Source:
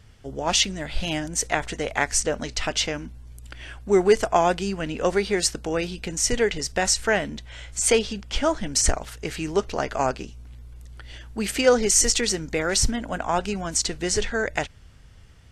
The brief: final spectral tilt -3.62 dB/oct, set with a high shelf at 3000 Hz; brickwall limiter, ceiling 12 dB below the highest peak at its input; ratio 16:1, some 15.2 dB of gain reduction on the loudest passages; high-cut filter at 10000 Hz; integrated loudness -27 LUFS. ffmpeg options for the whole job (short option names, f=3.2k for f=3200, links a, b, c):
-af "lowpass=10k,highshelf=f=3k:g=-4,acompressor=threshold=-27dB:ratio=16,volume=9dB,alimiter=limit=-16dB:level=0:latency=1"